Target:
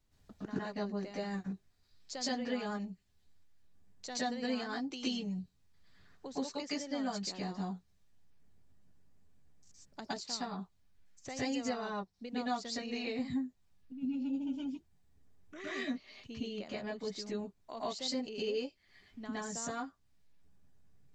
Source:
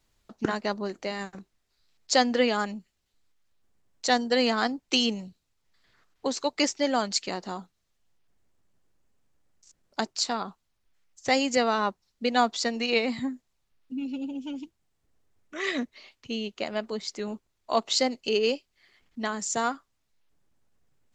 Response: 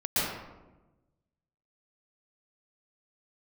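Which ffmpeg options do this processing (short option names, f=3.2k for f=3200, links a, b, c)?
-filter_complex "[0:a]lowshelf=f=290:g=8,acompressor=threshold=-38dB:ratio=2.5[a];[1:a]atrim=start_sample=2205,atrim=end_sample=6174[b];[a][b]afir=irnorm=-1:irlink=0,volume=-8.5dB"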